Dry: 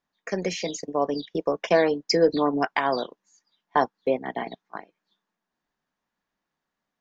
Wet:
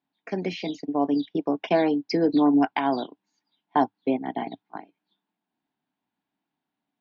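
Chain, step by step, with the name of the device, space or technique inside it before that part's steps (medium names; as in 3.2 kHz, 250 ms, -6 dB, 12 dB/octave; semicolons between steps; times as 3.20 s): guitar cabinet (cabinet simulation 110–4000 Hz, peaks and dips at 110 Hz +6 dB, 280 Hz +9 dB, 520 Hz -10 dB, 790 Hz +4 dB, 1.2 kHz -8 dB, 1.8 kHz -7 dB)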